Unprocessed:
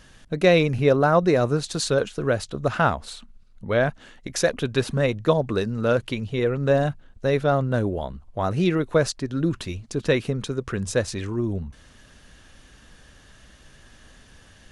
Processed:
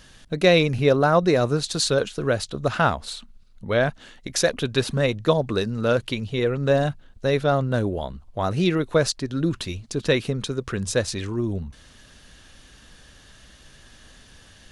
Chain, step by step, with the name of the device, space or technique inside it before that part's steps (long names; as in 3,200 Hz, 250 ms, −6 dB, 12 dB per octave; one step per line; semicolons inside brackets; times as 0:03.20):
presence and air boost (parametric band 4,000 Hz +4.5 dB 1 octave; high-shelf EQ 9,300 Hz +5.5 dB)